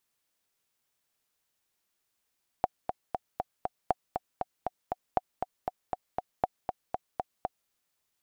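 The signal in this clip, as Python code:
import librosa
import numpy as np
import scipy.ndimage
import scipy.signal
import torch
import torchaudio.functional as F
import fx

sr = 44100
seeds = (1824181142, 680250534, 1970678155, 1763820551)

y = fx.click_track(sr, bpm=237, beats=5, bars=4, hz=739.0, accent_db=6.0, level_db=-11.0)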